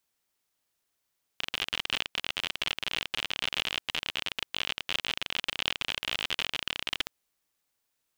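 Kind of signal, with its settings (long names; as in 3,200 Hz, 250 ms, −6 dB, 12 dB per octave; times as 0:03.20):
Geiger counter clicks 52 per second −13.5 dBFS 5.67 s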